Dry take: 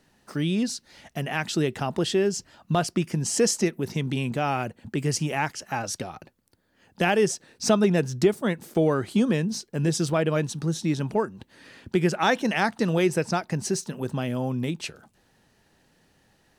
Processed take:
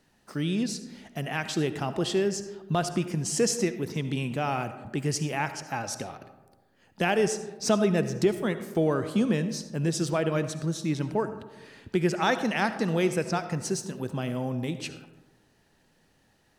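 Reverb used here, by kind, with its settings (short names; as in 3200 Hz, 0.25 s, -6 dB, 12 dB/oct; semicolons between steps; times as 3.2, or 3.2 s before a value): digital reverb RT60 1.2 s, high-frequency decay 0.4×, pre-delay 30 ms, DRR 10.5 dB; gain -3 dB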